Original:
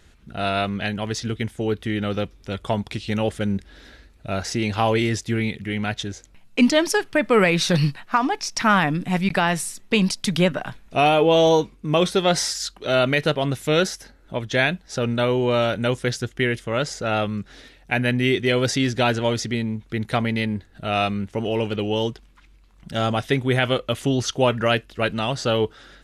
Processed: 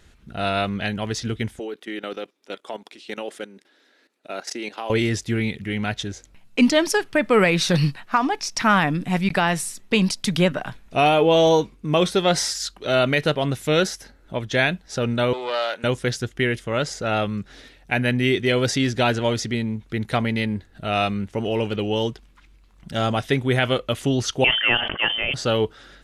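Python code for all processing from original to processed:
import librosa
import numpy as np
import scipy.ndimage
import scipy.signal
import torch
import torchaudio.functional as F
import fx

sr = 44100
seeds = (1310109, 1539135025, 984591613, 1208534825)

y = fx.chain(x, sr, fx.highpass(hz=280.0, slope=24),
    fx.level_steps(step_db=15), at=(1.59, 4.9))
y = fx.chain(y, sr, fx.highpass(hz=650.0, slope=12),
    fx.high_shelf(hz=5700.0, db=-4.0),
    fx.doppler_dist(depth_ms=0.14), at=(15.33, 15.84))
y = fx.chain(y, sr, fx.highpass(hz=230.0, slope=12),
    fx.freq_invert(carrier_hz=3300),
    fx.sustainer(db_per_s=62.0), at=(24.44, 25.34))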